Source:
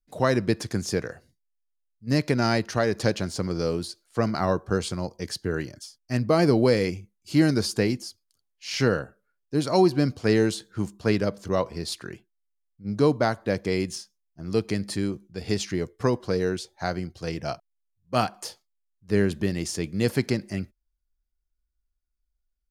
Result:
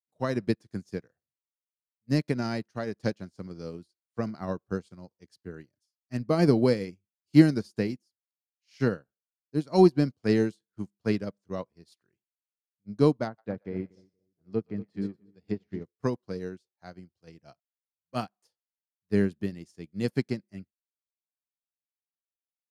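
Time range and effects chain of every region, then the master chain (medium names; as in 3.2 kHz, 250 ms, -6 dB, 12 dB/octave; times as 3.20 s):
13.26–15.84 s: low-pass that closes with the level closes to 1.4 kHz, closed at -22 dBFS + two-band feedback delay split 550 Hz, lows 237 ms, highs 119 ms, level -9 dB + tape noise reduction on one side only decoder only
whole clip: high-pass 63 Hz; dynamic bell 200 Hz, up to +6 dB, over -35 dBFS, Q 0.92; upward expansion 2.5:1, over -37 dBFS; trim +1 dB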